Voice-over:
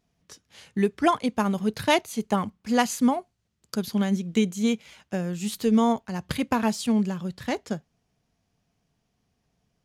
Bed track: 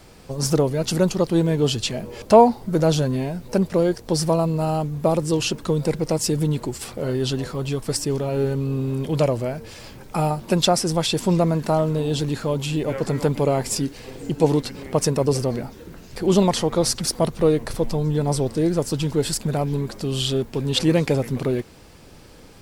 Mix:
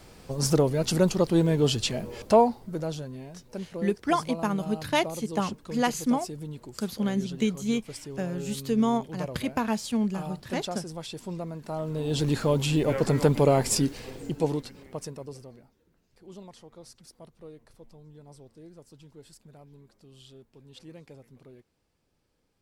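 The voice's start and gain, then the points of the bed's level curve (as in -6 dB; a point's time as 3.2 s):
3.05 s, -3.5 dB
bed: 2.11 s -3 dB
3.07 s -16.5 dB
11.62 s -16.5 dB
12.3 s -0.5 dB
13.91 s -0.5 dB
15.8 s -28.5 dB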